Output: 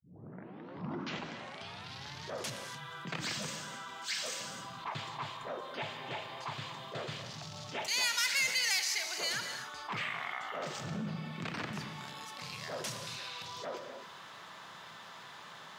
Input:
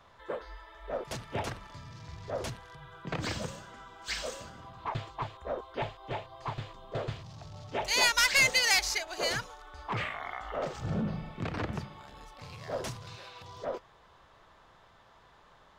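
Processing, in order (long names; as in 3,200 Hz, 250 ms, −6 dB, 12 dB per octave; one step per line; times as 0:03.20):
turntable start at the beginning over 2.41 s
high-pass filter 160 Hz 24 dB per octave
parametric band 460 Hz −11.5 dB 2.9 octaves
reverb whose tail is shaped and stops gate 300 ms flat, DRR 10 dB
envelope flattener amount 50%
level −5.5 dB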